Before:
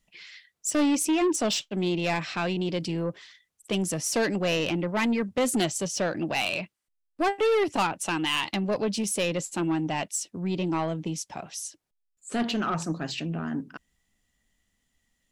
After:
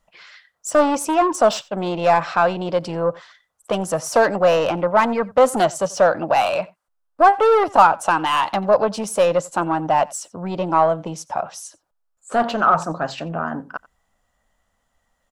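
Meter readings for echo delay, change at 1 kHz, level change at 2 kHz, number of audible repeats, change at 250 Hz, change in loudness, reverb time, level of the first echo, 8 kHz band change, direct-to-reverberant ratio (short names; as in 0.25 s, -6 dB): 89 ms, +15.0 dB, +6.0 dB, 1, +1.0 dB, +8.5 dB, none, -23.0 dB, 0.0 dB, none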